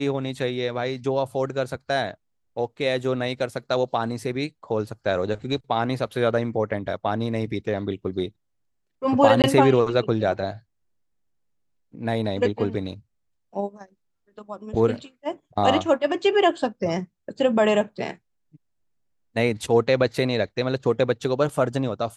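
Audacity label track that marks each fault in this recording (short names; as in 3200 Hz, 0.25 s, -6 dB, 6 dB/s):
9.420000	9.440000	gap 18 ms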